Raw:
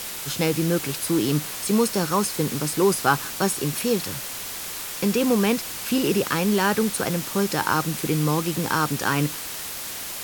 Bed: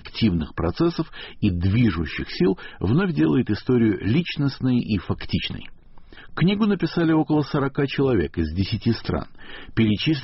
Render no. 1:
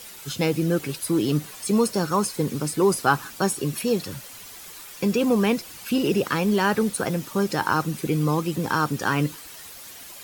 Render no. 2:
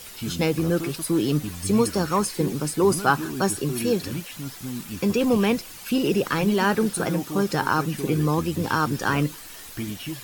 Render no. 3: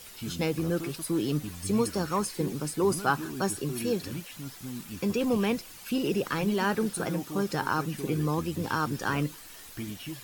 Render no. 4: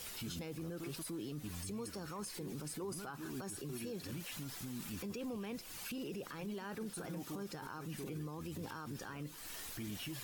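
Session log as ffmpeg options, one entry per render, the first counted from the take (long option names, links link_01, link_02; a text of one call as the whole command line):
ffmpeg -i in.wav -af "afftdn=noise_reduction=11:noise_floor=-33" out.wav
ffmpeg -i in.wav -i bed.wav -filter_complex "[1:a]volume=-12.5dB[link_01];[0:a][link_01]amix=inputs=2:normalize=0" out.wav
ffmpeg -i in.wav -af "volume=-6dB" out.wav
ffmpeg -i in.wav -af "acompressor=threshold=-36dB:ratio=6,alimiter=level_in=11.5dB:limit=-24dB:level=0:latency=1:release=23,volume=-11.5dB" out.wav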